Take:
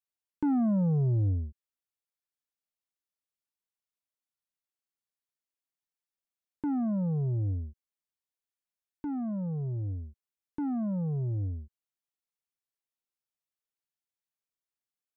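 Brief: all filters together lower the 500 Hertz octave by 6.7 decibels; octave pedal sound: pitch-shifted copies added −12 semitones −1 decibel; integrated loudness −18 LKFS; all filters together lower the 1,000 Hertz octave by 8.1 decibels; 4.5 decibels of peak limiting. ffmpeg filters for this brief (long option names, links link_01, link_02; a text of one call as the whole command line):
ffmpeg -i in.wav -filter_complex "[0:a]equalizer=frequency=500:width_type=o:gain=-6.5,equalizer=frequency=1000:width_type=o:gain=-8.5,alimiter=level_in=4dB:limit=-24dB:level=0:latency=1,volume=-4dB,asplit=2[link_01][link_02];[link_02]asetrate=22050,aresample=44100,atempo=2,volume=-1dB[link_03];[link_01][link_03]amix=inputs=2:normalize=0,volume=14dB" out.wav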